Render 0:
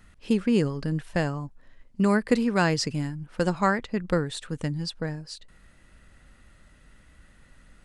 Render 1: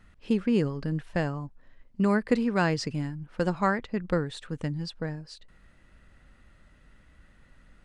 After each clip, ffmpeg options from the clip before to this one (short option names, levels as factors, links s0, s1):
-af "highshelf=f=6500:g=-12,volume=0.794"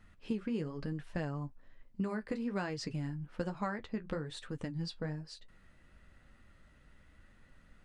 -af "acompressor=threshold=0.0355:ratio=6,flanger=delay=8.8:depth=5.3:regen=-43:speed=1.1:shape=sinusoidal"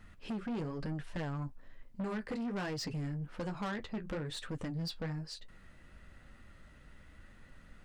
-af "asoftclip=type=tanh:threshold=0.0119,volume=1.78"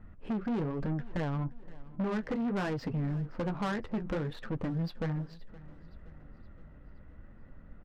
-af "adynamicsmooth=sensitivity=7.5:basefreq=1000,aecho=1:1:520|1040|1560|2080:0.0944|0.0491|0.0255|0.0133,volume=1.88"